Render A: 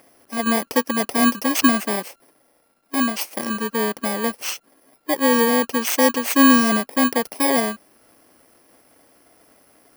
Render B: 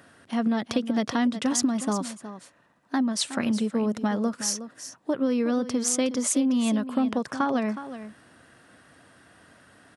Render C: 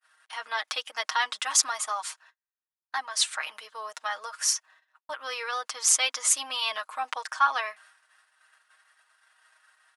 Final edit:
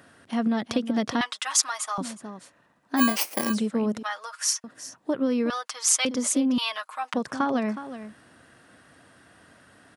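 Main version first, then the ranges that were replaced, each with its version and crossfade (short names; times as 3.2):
B
1.21–1.98 from C
2.99–3.52 from A, crossfade 0.06 s
4.03–4.64 from C
5.5–6.05 from C
6.58–7.14 from C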